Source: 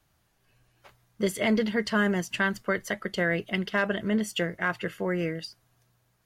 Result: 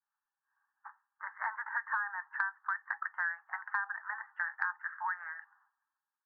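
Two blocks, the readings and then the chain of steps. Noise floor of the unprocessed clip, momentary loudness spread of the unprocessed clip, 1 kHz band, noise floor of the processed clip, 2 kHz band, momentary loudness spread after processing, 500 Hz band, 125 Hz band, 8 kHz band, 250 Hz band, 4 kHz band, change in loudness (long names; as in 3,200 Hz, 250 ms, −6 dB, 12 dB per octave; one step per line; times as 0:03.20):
−70 dBFS, 6 LU, −2.5 dB, below −85 dBFS, −4.5 dB, 12 LU, below −35 dB, below −40 dB, below −40 dB, below −40 dB, below −35 dB, −8.5 dB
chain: downward expander −55 dBFS
Chebyshev band-pass filter 810–1,800 Hz, order 5
downward compressor 16 to 1, threshold −39 dBFS, peak gain reduction 16.5 dB
level +8.5 dB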